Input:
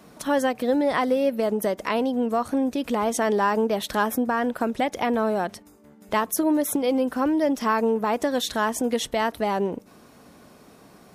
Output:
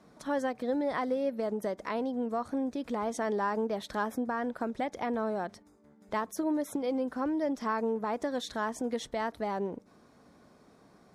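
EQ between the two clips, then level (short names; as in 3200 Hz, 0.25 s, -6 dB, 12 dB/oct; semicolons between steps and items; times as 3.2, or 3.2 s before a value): air absorption 54 m; bell 2800 Hz -8 dB 0.37 oct; -8.5 dB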